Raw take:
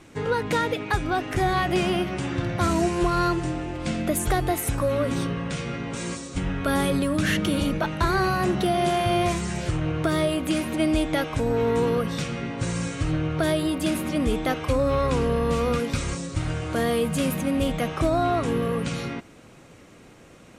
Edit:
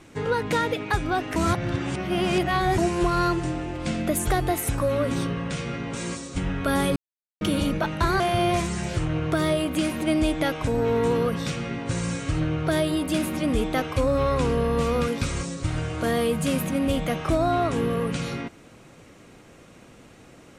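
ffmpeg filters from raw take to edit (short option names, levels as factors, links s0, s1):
-filter_complex "[0:a]asplit=6[s0][s1][s2][s3][s4][s5];[s0]atrim=end=1.362[s6];[s1]atrim=start=1.358:end=2.782,asetpts=PTS-STARTPTS,areverse[s7];[s2]atrim=start=2.778:end=6.96,asetpts=PTS-STARTPTS,afade=t=out:st=4.178:d=0.004:c=hsin[s8];[s3]atrim=start=6.96:end=7.41,asetpts=PTS-STARTPTS,volume=0[s9];[s4]atrim=start=7.41:end=8.202,asetpts=PTS-STARTPTS,afade=t=in:d=0.004:c=hsin[s10];[s5]atrim=start=8.918[s11];[s6][s7]acrossfade=d=0.004:c1=hsin:c2=hsin[s12];[s8][s9][s10]concat=n=3:v=0:a=1[s13];[s12][s13]acrossfade=d=0.004:c1=hsin:c2=hsin[s14];[s14][s11]acrossfade=d=0.004:c1=hsin:c2=hsin"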